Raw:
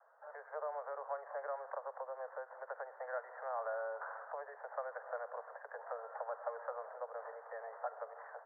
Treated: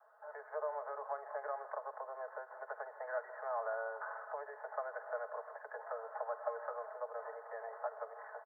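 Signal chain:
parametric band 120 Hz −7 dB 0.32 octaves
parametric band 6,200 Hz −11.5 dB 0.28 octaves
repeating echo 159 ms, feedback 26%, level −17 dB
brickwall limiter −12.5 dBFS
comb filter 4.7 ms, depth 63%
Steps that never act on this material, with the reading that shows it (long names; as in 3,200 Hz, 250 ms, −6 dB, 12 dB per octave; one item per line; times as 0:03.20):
parametric band 120 Hz: nothing at its input below 380 Hz
parametric band 6,200 Hz: nothing at its input above 1,900 Hz
brickwall limiter −12.5 dBFS: peak of its input −26.5 dBFS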